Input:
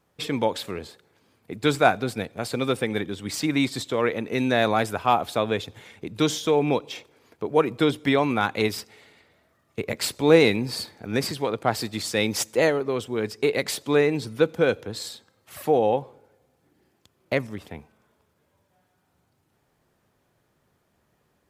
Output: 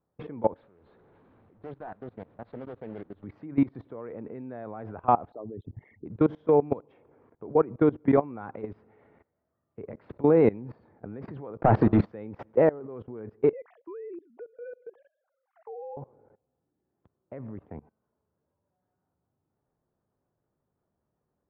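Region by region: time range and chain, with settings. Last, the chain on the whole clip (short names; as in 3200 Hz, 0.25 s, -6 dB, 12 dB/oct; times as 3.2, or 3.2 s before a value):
0.61–3.24 delta modulation 64 kbps, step -31 dBFS + ladder low-pass 4300 Hz, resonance 70% + Doppler distortion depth 0.47 ms
5.32–6.06 formant sharpening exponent 3 + comb 1 ms, depth 68%
11.61–12.05 de-hum 69.19 Hz, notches 6 + sample leveller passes 5
13.53–15.97 sine-wave speech + compressor 1.5:1, threshold -45 dBFS
whole clip: Bessel low-pass 960 Hz, order 4; level quantiser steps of 21 dB; gain +3 dB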